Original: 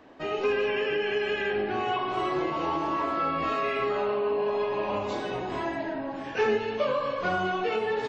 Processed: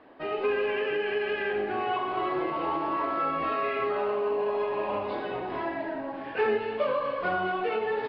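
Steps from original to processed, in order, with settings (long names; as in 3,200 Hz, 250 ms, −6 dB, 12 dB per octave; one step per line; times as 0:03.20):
variable-slope delta modulation 64 kbit/s
downsampling to 11,025 Hz
bass and treble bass −6 dB, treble −15 dB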